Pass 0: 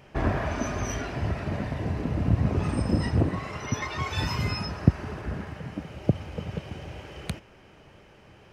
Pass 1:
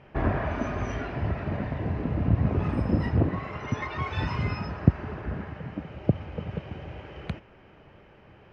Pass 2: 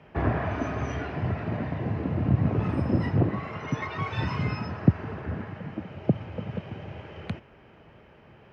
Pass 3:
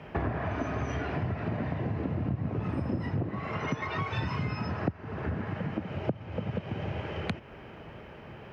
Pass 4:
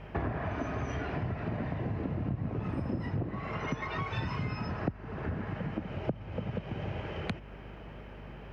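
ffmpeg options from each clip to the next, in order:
ffmpeg -i in.wav -af "lowpass=2600" out.wav
ffmpeg -i in.wav -af "afreqshift=20" out.wav
ffmpeg -i in.wav -af "acompressor=threshold=-36dB:ratio=6,volume=7dB" out.wav
ffmpeg -i in.wav -af "aeval=exprs='val(0)+0.00562*(sin(2*PI*50*n/s)+sin(2*PI*2*50*n/s)/2+sin(2*PI*3*50*n/s)/3+sin(2*PI*4*50*n/s)/4+sin(2*PI*5*50*n/s)/5)':channel_layout=same,volume=-2.5dB" out.wav

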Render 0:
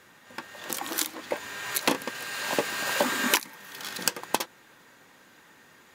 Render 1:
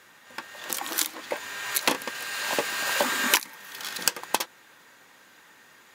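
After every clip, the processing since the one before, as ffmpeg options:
ffmpeg -i in.wav -af "lowshelf=frequency=480:gain=-8,volume=2.5dB" out.wav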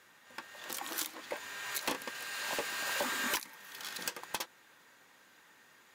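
ffmpeg -i in.wav -af "asoftclip=type=tanh:threshold=-18dB,volume=-7.5dB" out.wav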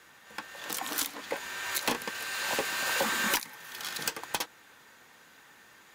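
ffmpeg -i in.wav -af "afreqshift=-31,volume=5.5dB" out.wav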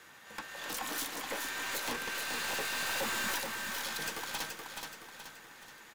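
ffmpeg -i in.wav -filter_complex "[0:a]aeval=exprs='(tanh(50.1*val(0)+0.15)-tanh(0.15))/50.1':channel_layout=same,asplit=2[link_01][link_02];[link_02]aecho=0:1:426|852|1278|1704|2130|2556:0.562|0.259|0.119|0.0547|0.0252|0.0116[link_03];[link_01][link_03]amix=inputs=2:normalize=0,volume=1dB" out.wav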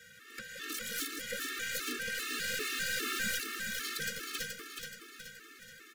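ffmpeg -i in.wav -af "asuperstop=centerf=810:order=20:qfactor=1.2,afftfilt=real='re*gt(sin(2*PI*2.5*pts/sr)*(1-2*mod(floor(b*sr/1024/230),2)),0)':imag='im*gt(sin(2*PI*2.5*pts/sr)*(1-2*mod(floor(b*sr/1024/230),2)),0)':win_size=1024:overlap=0.75,volume=3.5dB" out.wav

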